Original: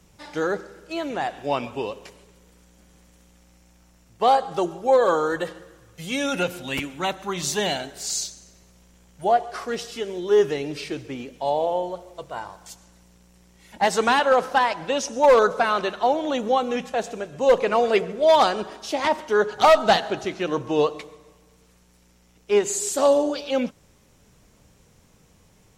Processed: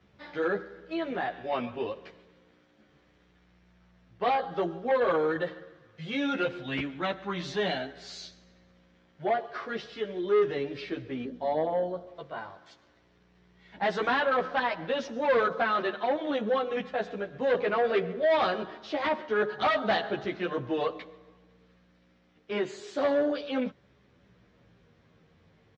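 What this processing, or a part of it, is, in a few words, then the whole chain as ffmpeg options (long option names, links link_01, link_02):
barber-pole flanger into a guitar amplifier: -filter_complex "[0:a]asplit=2[link_01][link_02];[link_02]adelay=11.6,afreqshift=-0.3[link_03];[link_01][link_03]amix=inputs=2:normalize=1,asoftclip=type=tanh:threshold=-19dB,highpass=79,equalizer=frequency=880:width_type=q:width=4:gain=-5,equalizer=frequency=1700:width_type=q:width=4:gain=3,equalizer=frequency=2700:width_type=q:width=4:gain=-4,lowpass=frequency=3800:width=0.5412,lowpass=frequency=3800:width=1.3066,asettb=1/sr,asplit=3[link_04][link_05][link_06];[link_04]atrim=end=11.254[link_07];[link_05]atrim=start=11.25:end=12.07,asetpts=PTS-STARTPTS,afade=type=in:duration=0.004:curve=qsin,afade=type=out:start_time=0.816:duration=0.004:curve=qsin,equalizer=frequency=100:width_type=o:width=0.67:gain=6,equalizer=frequency=250:width_type=o:width=0.67:gain=8,equalizer=frequency=2500:width_type=o:width=0.67:gain=-11[link_08];[link_06]atrim=start=12.066[link_09];[link_07][link_08]acrossfade=duration=0.004:curve1=hsin:curve2=qsin[link_10];[link_10][link_09]acrossfade=duration=0.004:curve1=qsin:curve2=hsin"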